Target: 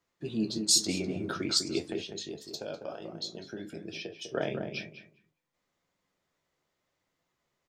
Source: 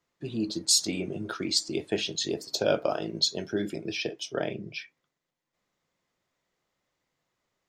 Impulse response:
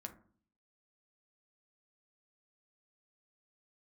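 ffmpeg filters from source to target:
-filter_complex "[0:a]asettb=1/sr,asplit=3[link_01][link_02][link_03];[link_01]atrim=end=1.864[link_04];[link_02]atrim=start=1.86:end=4.29,asetpts=PTS-STARTPTS,afade=type=in:duration=0.004:curve=qsin,afade=type=out:start_time=2.426:duration=0.004:curve=qsin,acompressor=threshold=-39dB:ratio=3[link_05];[link_03]atrim=start=4.286[link_06];[link_04][link_05]acrossfade=duration=0.004:curve1=hsin:curve2=qsin[link_07];[link_07][link_06]acrossfade=duration=0.004:curve1=qsin:curve2=hsin,flanger=delay=9.8:depth=4.9:regen=52:speed=1:shape=triangular,asplit=2[link_08][link_09];[link_09]adelay=200,lowpass=frequency=1300:poles=1,volume=-5.5dB,asplit=2[link_10][link_11];[link_11]adelay=200,lowpass=frequency=1300:poles=1,volume=0.23,asplit=2[link_12][link_13];[link_13]adelay=200,lowpass=frequency=1300:poles=1,volume=0.23[link_14];[link_08][link_10][link_12][link_14]amix=inputs=4:normalize=0,volume=3dB"

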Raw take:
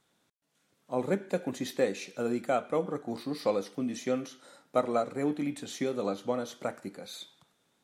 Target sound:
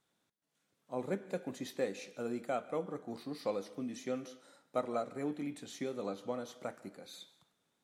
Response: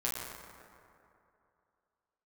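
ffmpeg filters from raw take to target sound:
-filter_complex "[0:a]asplit=2[link_01][link_02];[1:a]atrim=start_sample=2205,atrim=end_sample=6174,adelay=146[link_03];[link_02][link_03]afir=irnorm=-1:irlink=0,volume=-22.5dB[link_04];[link_01][link_04]amix=inputs=2:normalize=0,volume=-7.5dB"

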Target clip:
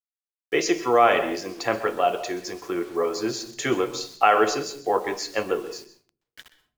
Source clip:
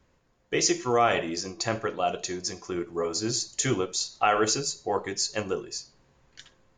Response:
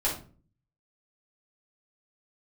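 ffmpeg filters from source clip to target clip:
-filter_complex "[0:a]acrossover=split=260 3400:gain=0.224 1 0.2[link_01][link_02][link_03];[link_01][link_02][link_03]amix=inputs=3:normalize=0,acrusher=bits=8:mix=0:aa=0.000001,asplit=2[link_04][link_05];[1:a]atrim=start_sample=2205,adelay=123[link_06];[link_05][link_06]afir=irnorm=-1:irlink=0,volume=-21.5dB[link_07];[link_04][link_07]amix=inputs=2:normalize=0,volume=5.5dB"

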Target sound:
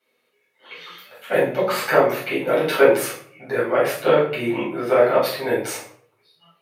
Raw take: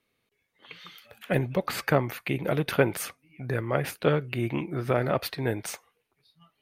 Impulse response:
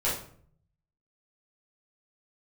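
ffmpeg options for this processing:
-filter_complex "[0:a]highpass=340[link_01];[1:a]atrim=start_sample=2205,asetrate=43218,aresample=44100[link_02];[link_01][link_02]afir=irnorm=-1:irlink=0,volume=-1dB"

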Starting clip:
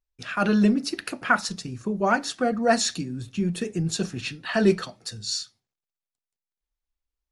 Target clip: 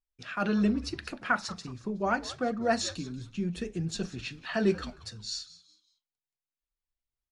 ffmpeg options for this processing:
ffmpeg -i in.wav -filter_complex "[0:a]asettb=1/sr,asplit=3[link_01][link_02][link_03];[link_01]atrim=end=4.324[link_04];[link_02]atrim=start=4.32:end=5,asetpts=PTS-STARTPTS,afade=type=in:duration=0.004:curve=qsin,afade=type=out:start_time=0.676:duration=0.004:curve=qsin,acrusher=bits=8:mix=0:aa=0.5[link_05];[link_03]atrim=start=4.996[link_06];[link_04][link_05]acrossfade=duration=0.004:curve1=hsin:curve2=qsin[link_07];[link_07][link_06]acrossfade=duration=0.004:curve1=qsin:curve2=hsin,lowpass=6800,asplit=4[link_08][link_09][link_10][link_11];[link_09]adelay=185,afreqshift=-140,volume=-17.5dB[link_12];[link_10]adelay=370,afreqshift=-280,volume=-26.9dB[link_13];[link_11]adelay=555,afreqshift=-420,volume=-36.2dB[link_14];[link_08][link_12][link_13][link_14]amix=inputs=4:normalize=0,volume=-6.5dB" out.wav

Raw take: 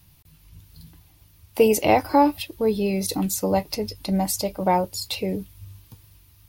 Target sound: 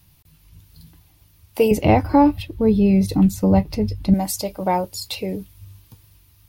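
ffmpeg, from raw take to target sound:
ffmpeg -i in.wav -filter_complex "[0:a]asettb=1/sr,asplit=3[link_01][link_02][link_03];[link_01]atrim=end=1.714[link_04];[link_02]atrim=start=1.71:end=4.14,asetpts=PTS-STARTPTS,afade=type=in:duration=0.004:curve=qsin,afade=type=out:start_time=2.426:duration=0.004:curve=qsin,bass=frequency=250:gain=15,treble=frequency=4000:gain=-9[link_05];[link_03]atrim=start=4.136[link_06];[link_04][link_05]acrossfade=duration=0.004:curve1=hsin:curve2=qsin[link_07];[link_07][link_06]acrossfade=duration=0.004:curve1=qsin:curve2=hsin" out.wav

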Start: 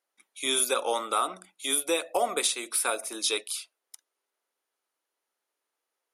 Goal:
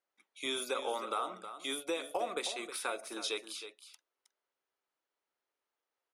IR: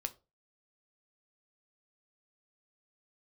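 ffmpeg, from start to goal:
-af "equalizer=frequency=12000:width=0.54:gain=-13.5,acompressor=threshold=-29dB:ratio=2.5,aecho=1:1:316:0.282,volume=-4dB"

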